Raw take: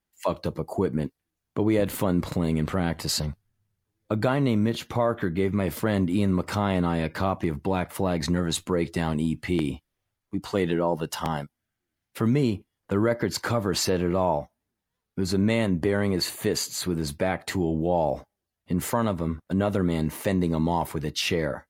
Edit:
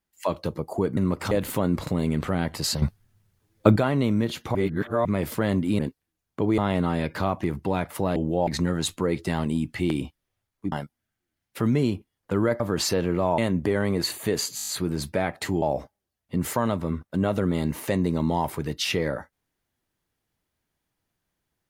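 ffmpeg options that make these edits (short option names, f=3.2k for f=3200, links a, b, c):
-filter_complex "[0:a]asplit=21[a][b][c][d][e][f][g][h][i][j][k][l][m][n][o][p][q][r][s][t][u];[a]atrim=end=0.972[v];[b]atrim=start=6.238:end=6.582[w];[c]atrim=start=1.758:end=3.272[x];[d]atrim=start=3.268:end=4.212,asetpts=PTS-STARTPTS,volume=10dB[y];[e]atrim=start=4.208:end=5.002[z];[f]atrim=start=4.998:end=5.502,asetpts=PTS-STARTPTS,areverse[aa];[g]atrim=start=5.498:end=6.242[ab];[h]atrim=start=0.968:end=1.762[ac];[i]atrim=start=6.578:end=8.162[ad];[j]atrim=start=17.678:end=17.992[ae];[k]atrim=start=8.158:end=10.412[af];[l]atrim=start=11.318:end=13.202[ag];[m]atrim=start=13.558:end=14.342[ah];[n]atrim=start=15.558:end=16.762[ai];[o]atrim=start=16.738:end=16.762[aj];[p]atrim=start=16.738:end=16.762[ak];[q]atrim=start=16.738:end=16.762[al];[r]atrim=start=16.738:end=16.762[am];[s]atrim=start=16.738:end=16.762[an];[t]atrim=start=16.738:end=17.682[ao];[u]atrim=start=17.988[ap];[v][w]acrossfade=d=0.004:c1=hsin:c2=hsin[aq];[aq][x]acrossfade=d=0.004:c1=hsin:c2=hsin[ar];[ar][y]acrossfade=d=0.004:c1=hsin:c2=hsin[as];[as][z]acrossfade=d=0.004:c1=hsin:c2=hsin[at];[at][aa]acrossfade=d=0.004:c1=hsin:c2=hsin[au];[au][ab]acrossfade=d=0.004:c1=hsin:c2=hsin[av];[av][ac]acrossfade=d=0.004:c1=hsin:c2=hsin[aw];[aw][ad]acrossfade=d=0.004:c1=hsin:c2=hsin[ax];[ax][ae]acrossfade=d=0.004:c1=hsin:c2=hsin[ay];[ay][af]acrossfade=d=0.004:c1=hsin:c2=hsin[az];[az][ag]acrossfade=d=0.004:c1=hsin:c2=hsin[ba];[ba][ah]acrossfade=d=0.004:c1=hsin:c2=hsin[bb];[bb][ai]acrossfade=d=0.004:c1=hsin:c2=hsin[bc];[bc][aj]acrossfade=d=0.004:c1=hsin:c2=hsin[bd];[bd][ak]acrossfade=d=0.004:c1=hsin:c2=hsin[be];[be][al]acrossfade=d=0.004:c1=hsin:c2=hsin[bf];[bf][am]acrossfade=d=0.004:c1=hsin:c2=hsin[bg];[bg][an]acrossfade=d=0.004:c1=hsin:c2=hsin[bh];[bh][ao]acrossfade=d=0.004:c1=hsin:c2=hsin[bi];[bi][ap]acrossfade=d=0.004:c1=hsin:c2=hsin"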